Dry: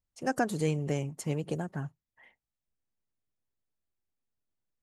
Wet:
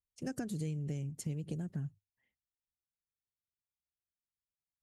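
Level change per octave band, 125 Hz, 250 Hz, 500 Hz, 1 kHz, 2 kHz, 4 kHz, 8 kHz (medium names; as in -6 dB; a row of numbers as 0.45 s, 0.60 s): -4.0 dB, -5.5 dB, -14.0 dB, under -15 dB, -16.0 dB, -9.5 dB, -5.5 dB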